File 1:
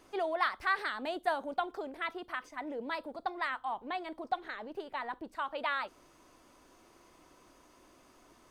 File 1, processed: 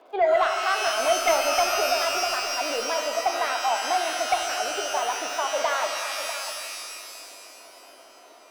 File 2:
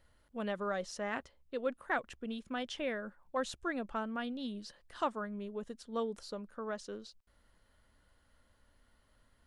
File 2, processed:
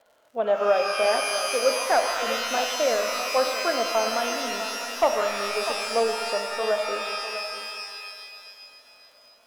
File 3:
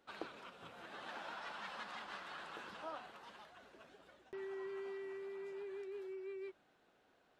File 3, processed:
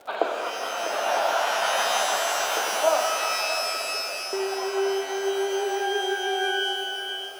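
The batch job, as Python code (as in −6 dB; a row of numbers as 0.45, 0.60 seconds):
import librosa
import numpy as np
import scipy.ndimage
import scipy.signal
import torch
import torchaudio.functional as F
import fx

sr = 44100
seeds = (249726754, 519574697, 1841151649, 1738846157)

p1 = fx.cabinet(x, sr, low_hz=320.0, low_slope=24, high_hz=3400.0, hz=(330.0, 670.0, 1200.0, 1900.0, 2800.0), db=(-7, 9, -4, -10, -6))
p2 = fx.dmg_crackle(p1, sr, seeds[0], per_s=110.0, level_db=-60.0)
p3 = p2 + fx.echo_single(p2, sr, ms=648, db=-12.0, dry=0)
p4 = fx.fold_sine(p3, sr, drive_db=8, ceiling_db=-13.0)
p5 = fx.rev_shimmer(p4, sr, seeds[1], rt60_s=2.4, semitones=12, shimmer_db=-2, drr_db=5.0)
y = p5 * 10.0 ** (-26 / 20.0) / np.sqrt(np.mean(np.square(p5)))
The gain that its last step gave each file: −3.0, 0.0, +10.0 decibels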